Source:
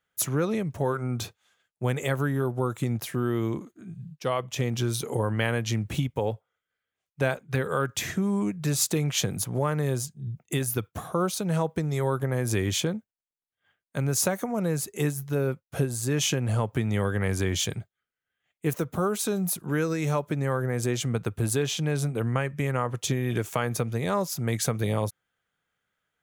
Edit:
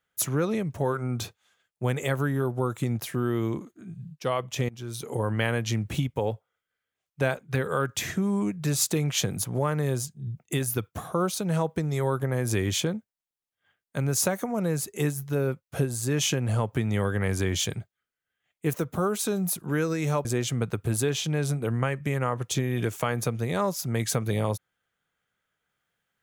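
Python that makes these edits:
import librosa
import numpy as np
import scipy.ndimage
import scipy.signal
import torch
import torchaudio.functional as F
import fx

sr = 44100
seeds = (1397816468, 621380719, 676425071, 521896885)

y = fx.edit(x, sr, fx.fade_in_from(start_s=4.69, length_s=0.61, floor_db=-21.5),
    fx.cut(start_s=20.25, length_s=0.53), tone=tone)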